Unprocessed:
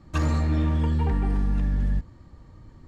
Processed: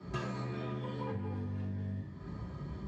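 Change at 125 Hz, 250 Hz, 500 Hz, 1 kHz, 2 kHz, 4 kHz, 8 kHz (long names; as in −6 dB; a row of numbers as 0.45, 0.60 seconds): −13.0 dB, −11.0 dB, −5.5 dB, −9.0 dB, −8.5 dB, −8.0 dB, can't be measured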